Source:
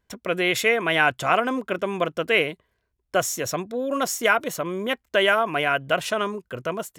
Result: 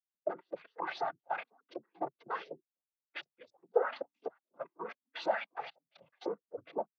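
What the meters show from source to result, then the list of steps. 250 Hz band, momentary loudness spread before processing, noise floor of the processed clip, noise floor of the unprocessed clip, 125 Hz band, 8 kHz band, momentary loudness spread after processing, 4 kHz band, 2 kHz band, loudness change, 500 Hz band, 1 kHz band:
-20.5 dB, 9 LU, under -85 dBFS, -75 dBFS, under -25 dB, under -35 dB, 14 LU, -23.0 dB, -22.0 dB, -16.5 dB, -14.0 dB, -14.0 dB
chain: local Wiener filter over 25 samples; hum notches 50/100/150/200/250/300 Hz; harmonic-percussive split harmonic +6 dB; peak limiter -11 dBFS, peak gain reduction 9 dB; wavefolder -21.5 dBFS; trance gate "..x.x.xxx.x" 116 bpm -24 dB; LFO band-pass saw up 4 Hz 510–5700 Hz; noise-vocoded speech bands 16; distance through air 140 m; spectral contrast expander 1.5:1; trim +5 dB

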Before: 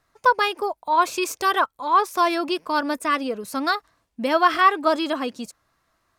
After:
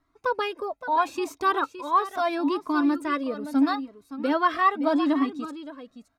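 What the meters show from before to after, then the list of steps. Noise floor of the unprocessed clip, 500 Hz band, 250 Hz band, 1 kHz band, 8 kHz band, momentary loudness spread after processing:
-71 dBFS, -4.0 dB, +3.5 dB, -5.0 dB, under -10 dB, 11 LU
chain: treble shelf 3.2 kHz -10.5 dB; small resonant body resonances 280/3800 Hz, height 15 dB, ringing for 85 ms; on a send: delay 568 ms -12 dB; on the sum: Shepard-style flanger rising 0.77 Hz

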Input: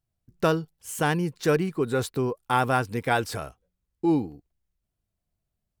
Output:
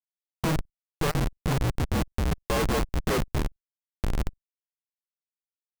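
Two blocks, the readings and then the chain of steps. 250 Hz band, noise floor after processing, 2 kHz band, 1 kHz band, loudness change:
-4.0 dB, under -85 dBFS, -5.0 dB, -6.5 dB, -3.0 dB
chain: hum 50 Hz, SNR 27 dB; level rider gain up to 10.5 dB; mistuned SSB -310 Hz 160–2700 Hz; Schmitt trigger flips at -22 dBFS; level held to a coarse grid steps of 24 dB

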